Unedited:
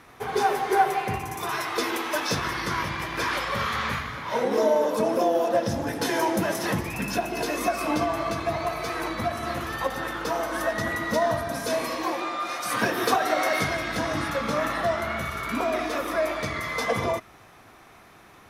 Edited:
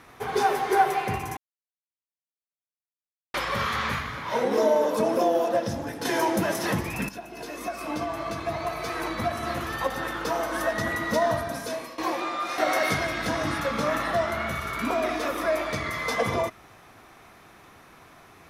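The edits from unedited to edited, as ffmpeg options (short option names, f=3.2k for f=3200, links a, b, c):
-filter_complex "[0:a]asplit=7[a][b][c][d][e][f][g];[a]atrim=end=1.37,asetpts=PTS-STARTPTS,afade=t=out:st=1.366:d=0.004:c=hsin[h];[b]atrim=start=1.37:end=3.34,asetpts=PTS-STARTPTS,volume=0[i];[c]atrim=start=3.34:end=6.05,asetpts=PTS-STARTPTS,afade=t=in:d=0.004:c=hsin,afade=t=out:st=1.99:d=0.72:silence=0.473151[j];[d]atrim=start=6.05:end=7.09,asetpts=PTS-STARTPTS,afade=t=in:d=0.004:c=hsin:silence=0.473151,afade=t=out:st=1.036:d=0.004:c=hsin:silence=0.199526[k];[e]atrim=start=7.09:end=11.98,asetpts=PTS-STARTPTS,afade=t=in:d=2.14:silence=0.199526,afade=t=out:st=4.29:d=0.6:silence=0.16788[l];[f]atrim=start=11.98:end=12.582,asetpts=PTS-STARTPTS,afade=t=in:d=0.004:c=hsin:silence=0.16788[m];[g]atrim=start=13.278[n];[h][i][j][k][l][m]concat=n=6:v=0:a=1[o];[o][n]acrossfade=d=0.004:c1=hsin:c2=hsin"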